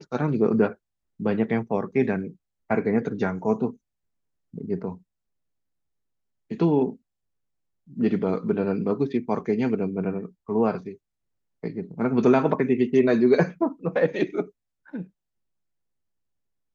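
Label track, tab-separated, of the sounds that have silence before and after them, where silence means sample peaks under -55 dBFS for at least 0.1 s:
1.190000	2.360000	sound
2.700000	3.770000	sound
4.540000	5.020000	sound
6.500000	6.970000	sound
7.870000	10.330000	sound
10.470000	10.970000	sound
11.630000	14.500000	sound
14.860000	15.100000	sound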